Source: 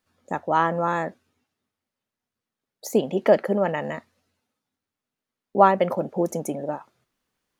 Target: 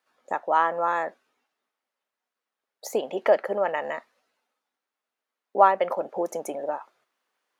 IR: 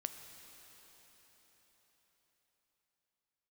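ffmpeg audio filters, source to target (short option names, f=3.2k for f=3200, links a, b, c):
-filter_complex "[0:a]highpass=600,highshelf=f=3.1k:g=-9.5,asplit=2[a][b];[b]acompressor=threshold=-33dB:ratio=6,volume=-1.5dB[c];[a][c]amix=inputs=2:normalize=0"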